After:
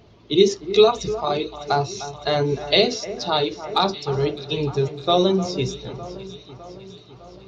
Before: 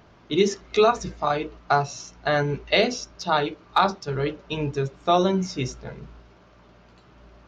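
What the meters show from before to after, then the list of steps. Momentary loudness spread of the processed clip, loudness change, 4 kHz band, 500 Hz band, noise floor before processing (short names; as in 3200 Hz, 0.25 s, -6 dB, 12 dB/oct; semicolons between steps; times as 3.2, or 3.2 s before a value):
18 LU, +3.0 dB, +6.5 dB, +4.0 dB, -54 dBFS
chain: bin magnitudes rounded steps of 15 dB; fifteen-band EQ 100 Hz +7 dB, 400 Hz +6 dB, 1600 Hz -7 dB, 4000 Hz +9 dB; echo with dull and thin repeats by turns 0.303 s, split 2000 Hz, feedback 76%, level -13 dB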